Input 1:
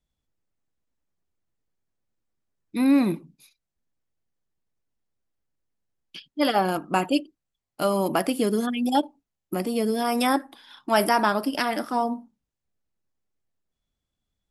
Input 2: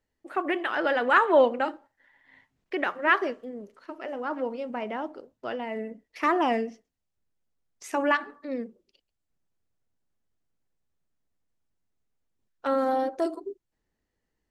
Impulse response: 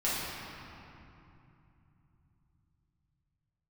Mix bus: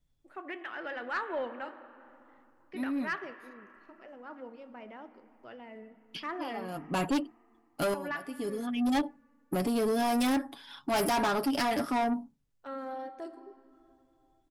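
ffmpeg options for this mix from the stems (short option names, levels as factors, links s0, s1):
-filter_complex "[0:a]aecho=1:1:7.2:0.5,volume=0.891[s0];[1:a]adynamicequalizer=threshold=0.0126:dfrequency=2000:dqfactor=0.76:tfrequency=2000:tqfactor=0.76:attack=5:release=100:ratio=0.375:range=3.5:mode=boostabove:tftype=bell,volume=0.133,asplit=3[s1][s2][s3];[s2]volume=0.1[s4];[s3]apad=whole_len=639896[s5];[s0][s5]sidechaincompress=threshold=0.00158:ratio=16:attack=16:release=347[s6];[2:a]atrim=start_sample=2205[s7];[s4][s7]afir=irnorm=-1:irlink=0[s8];[s6][s1][s8]amix=inputs=3:normalize=0,lowshelf=f=190:g=8.5,asoftclip=type=tanh:threshold=0.0596"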